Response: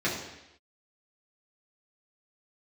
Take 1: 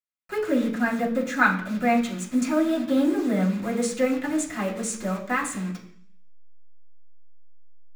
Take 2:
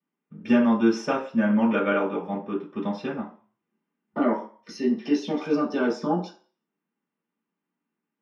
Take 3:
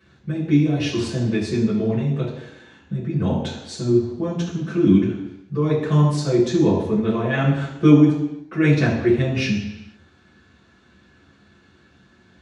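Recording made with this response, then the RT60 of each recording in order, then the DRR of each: 3; 0.60 s, 0.40 s, 0.90 s; -8.0 dB, -14.5 dB, -8.0 dB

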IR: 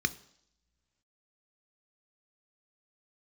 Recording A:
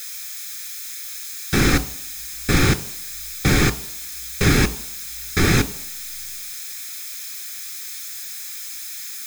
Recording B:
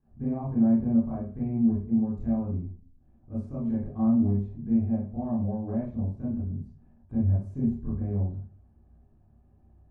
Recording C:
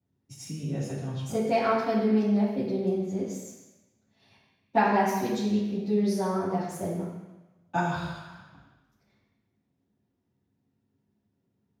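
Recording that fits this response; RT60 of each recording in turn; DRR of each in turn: A; no single decay rate, 0.45 s, 1.1 s; 12.5 dB, -11.0 dB, -12.0 dB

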